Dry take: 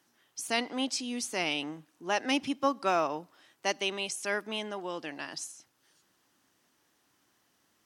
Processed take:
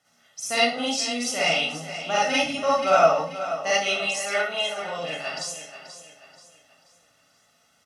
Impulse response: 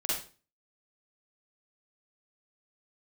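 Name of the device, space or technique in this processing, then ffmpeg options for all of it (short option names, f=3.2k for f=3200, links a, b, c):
microphone above a desk: -filter_complex "[0:a]lowpass=10k,asettb=1/sr,asplit=3[a][b][c];[a]atrim=end=4.004[d];[b]atrim=start=4:end=4.82,asetpts=PTS-STARTPTS,afade=t=in:d=0.004:c=qsin,afade=t=out:st=0.816:d=0.004:c=qsin,bass=f=250:g=-15,treble=f=4k:g=-2[e];[c]atrim=start=4.816[f];[d][e]acrossfade=d=0.004:c1=hsin:c2=qsin[g];[g][f]acrossfade=d=0.004:c1=qsin:c2=hsin,highpass=55,aecho=1:1:1.5:0.84[h];[1:a]atrim=start_sample=2205[i];[h][i]afir=irnorm=-1:irlink=0,aecho=1:1:483|966|1449|1932:0.251|0.098|0.0382|0.0149"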